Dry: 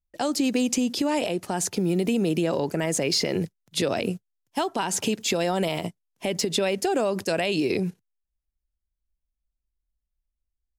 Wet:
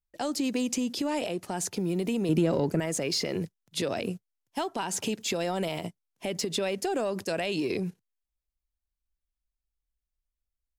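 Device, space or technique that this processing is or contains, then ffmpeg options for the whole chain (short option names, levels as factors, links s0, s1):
parallel distortion: -filter_complex "[0:a]asettb=1/sr,asplit=3[s0][s1][s2];[s0]atrim=end=2.294[s3];[s1]atrim=start=2.29:end=2.8,asetpts=PTS-STARTPTS,afade=t=in:d=0.004:c=qsin,afade=t=out:st=0.506:d=0.004:c=qsin,lowshelf=f=430:g=9.5[s4];[s2]atrim=start=2.796[s5];[s3][s4]acrossfade=d=0.004:c1=hsin:c2=qsin[s6];[s6][s5]acrossfade=d=0.004:c1=qsin:c2=hsin,asplit=2[s7][s8];[s8]asoftclip=type=hard:threshold=0.0708,volume=0.224[s9];[s7][s9]amix=inputs=2:normalize=0,volume=0.473"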